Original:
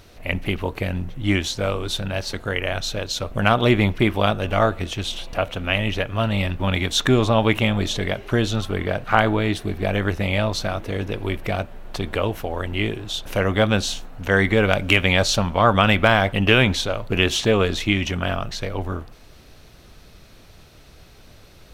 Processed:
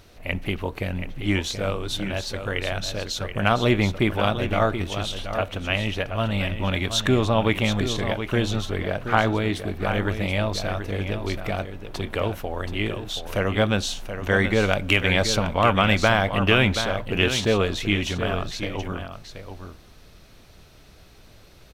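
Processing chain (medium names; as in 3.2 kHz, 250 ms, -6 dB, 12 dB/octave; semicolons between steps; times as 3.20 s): delay 728 ms -9 dB; trim -3 dB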